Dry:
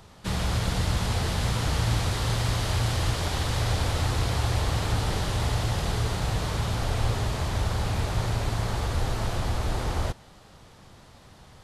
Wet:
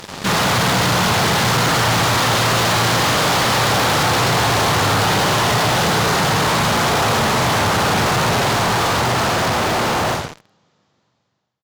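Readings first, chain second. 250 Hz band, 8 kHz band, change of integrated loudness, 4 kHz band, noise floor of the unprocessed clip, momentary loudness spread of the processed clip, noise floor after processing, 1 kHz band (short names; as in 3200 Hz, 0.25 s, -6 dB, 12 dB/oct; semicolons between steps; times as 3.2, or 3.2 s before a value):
+12.5 dB, +14.5 dB, +12.0 dB, +14.5 dB, -52 dBFS, 2 LU, -66 dBFS, +17.0 dB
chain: ending faded out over 3.53 s; HPF 120 Hz 24 dB/oct; on a send: reverse bouncing-ball echo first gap 40 ms, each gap 1.2×, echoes 5; on the sum: downsampling 16000 Hz; dynamic EQ 1200 Hz, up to +6 dB, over -46 dBFS, Q 0.71; in parallel at -5 dB: fuzz box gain 47 dB, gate -50 dBFS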